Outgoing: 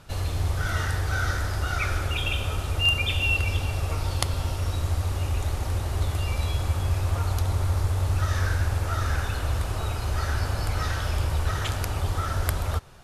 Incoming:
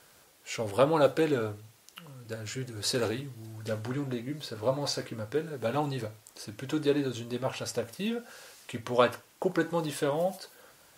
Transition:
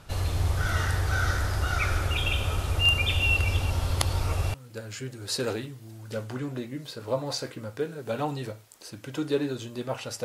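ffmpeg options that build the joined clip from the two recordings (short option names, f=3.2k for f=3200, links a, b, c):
-filter_complex "[0:a]apad=whole_dur=10.24,atrim=end=10.24,asplit=2[a][b];[a]atrim=end=3.702[c];[b]atrim=start=3.698:end=4.542,asetpts=PTS-STARTPTS,areverse[d];[1:a]atrim=start=2.088:end=7.79[e];[c][d]acrossfade=d=0.004:c1=hsin:c2=hsin[f];[f][e]acrossfade=d=0.004:c1=hsin:c2=hsin"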